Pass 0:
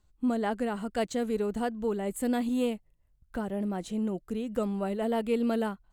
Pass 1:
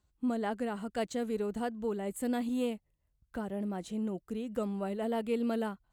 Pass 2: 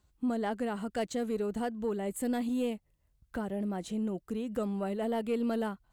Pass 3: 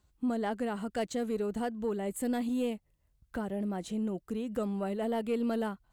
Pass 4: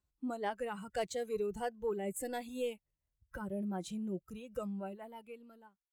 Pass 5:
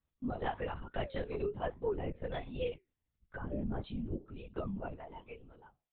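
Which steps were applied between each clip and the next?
high-pass 43 Hz; trim -4 dB
in parallel at -2 dB: compression, threshold -42 dBFS, peak gain reduction 14 dB; on the sum: saturation -21 dBFS, distortion -25 dB
no audible change
fade out at the end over 1.65 s; spectral noise reduction 14 dB; trim -1.5 dB
flange 1.1 Hz, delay 7.7 ms, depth 8.9 ms, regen -74%; LPC vocoder at 8 kHz whisper; trim +5 dB

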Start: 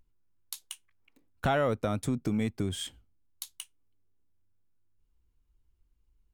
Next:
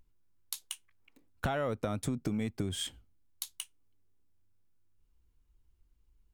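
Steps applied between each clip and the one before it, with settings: compression 6:1, threshold -31 dBFS, peak gain reduction 8.5 dB; trim +1.5 dB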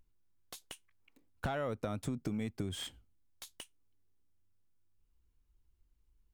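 slew-rate limiter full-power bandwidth 71 Hz; trim -3.5 dB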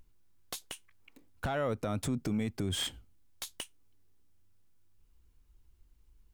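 peak limiter -32.5 dBFS, peak gain reduction 9 dB; trim +8.5 dB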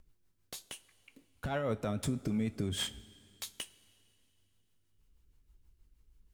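rotary cabinet horn 6.3 Hz; two-slope reverb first 0.2 s, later 2.7 s, from -20 dB, DRR 9 dB

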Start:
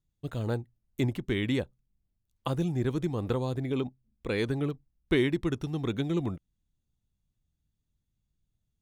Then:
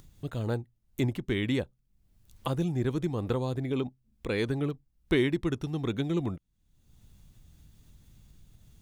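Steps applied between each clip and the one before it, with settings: upward compressor, threshold -35 dBFS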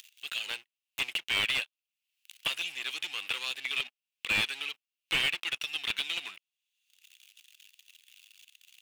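waveshaping leveller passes 3; resonant high-pass 2.7 kHz, resonance Q 5.3; slew-rate limiter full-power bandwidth 180 Hz

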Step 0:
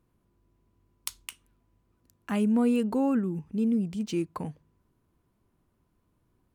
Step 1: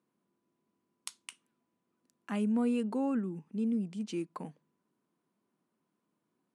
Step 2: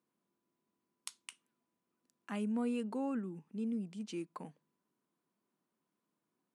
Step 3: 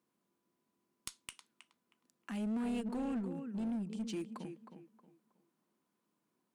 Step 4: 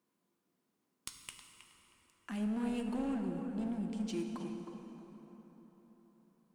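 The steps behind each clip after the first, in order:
Chebyshev band-pass 190–9900 Hz, order 3; trim -5.5 dB
bass shelf 450 Hz -3.5 dB; trim -3 dB
dynamic bell 910 Hz, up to -7 dB, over -54 dBFS, Q 0.78; tape echo 316 ms, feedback 33%, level -8 dB, low-pass 2.1 kHz; one-sided clip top -38.5 dBFS; trim +2.5 dB
plate-style reverb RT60 4.5 s, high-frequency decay 0.55×, DRR 4 dB

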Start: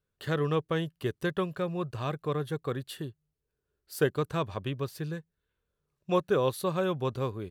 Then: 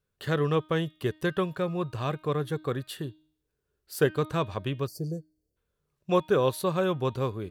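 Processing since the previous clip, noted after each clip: de-hum 310.3 Hz, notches 16; time-frequency box 4.87–5.57 s, 760–4300 Hz -29 dB; trim +2.5 dB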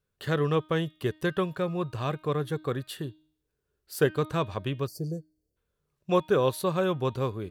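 no audible change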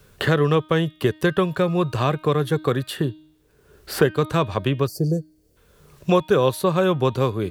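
three bands compressed up and down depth 70%; trim +7.5 dB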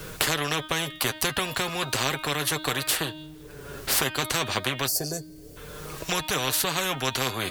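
flange 0.33 Hz, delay 6.2 ms, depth 2 ms, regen +29%; spectrum-flattening compressor 4:1; trim +2 dB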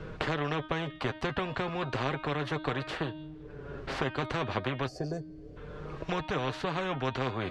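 tape spacing loss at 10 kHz 39 dB

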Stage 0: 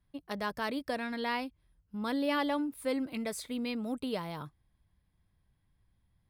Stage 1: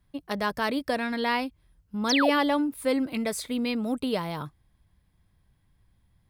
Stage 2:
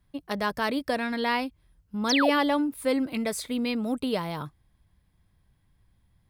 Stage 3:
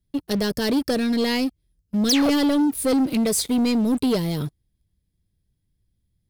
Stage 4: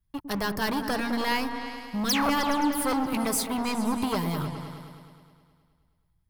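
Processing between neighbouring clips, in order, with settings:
painted sound fall, 2.09–2.30 s, 420–6800 Hz -32 dBFS; trim +7 dB
no audible change
FFT filter 430 Hz 0 dB, 1 kHz -17 dB, 5 kHz +2 dB; waveshaping leveller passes 3
graphic EQ 125/250/500/1000/4000/8000 Hz -3/-8/-10/+9/-6/-5 dB; delay with an opening low-pass 105 ms, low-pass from 400 Hz, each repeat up 2 oct, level -6 dB

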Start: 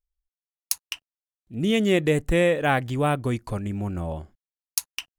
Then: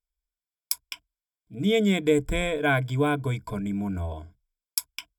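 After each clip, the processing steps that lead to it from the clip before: rippled EQ curve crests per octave 1.7, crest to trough 16 dB; trim -4.5 dB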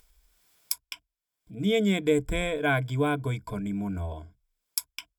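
upward compressor, threshold -39 dBFS; trim -2 dB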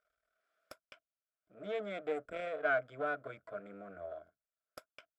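partial rectifier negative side -12 dB; two resonant band-passes 920 Hz, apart 1.1 oct; buffer glitch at 4.25 s, samples 1024, times 1; trim +4 dB

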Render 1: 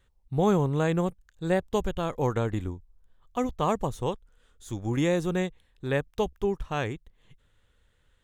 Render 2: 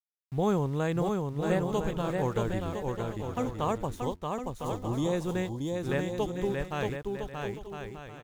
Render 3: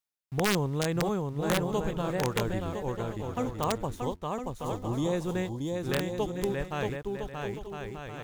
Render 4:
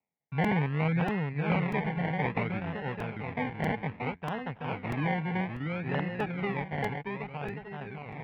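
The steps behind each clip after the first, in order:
small samples zeroed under -43.5 dBFS; time-frequency box 4.01–5.13 s, 1.1–3 kHz -14 dB; bouncing-ball echo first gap 630 ms, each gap 0.6×, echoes 5; trim -4 dB
reverse; upward compressor, threshold -33 dBFS; reverse; integer overflow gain 17.5 dB
decimation with a swept rate 27×, swing 60% 0.62 Hz; cabinet simulation 120–2500 Hz, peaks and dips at 160 Hz +6 dB, 340 Hz -10 dB, 560 Hz -5 dB, 810 Hz +4 dB, 1.2 kHz -7 dB, 2.2 kHz +8 dB; crackling interface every 0.64 s, samples 128, repeat, from 0.44 s

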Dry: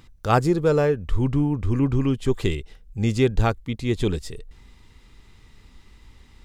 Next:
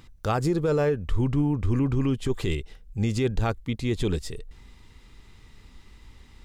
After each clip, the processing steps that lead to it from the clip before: peak limiter -15.5 dBFS, peak gain reduction 10 dB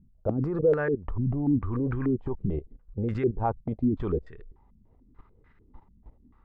vibrato 0.42 Hz 28 cents; level held to a coarse grid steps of 15 dB; step-sequenced low-pass 6.8 Hz 200–1600 Hz; trim +1 dB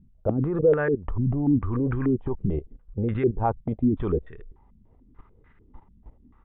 resampled via 8 kHz; trim +3 dB

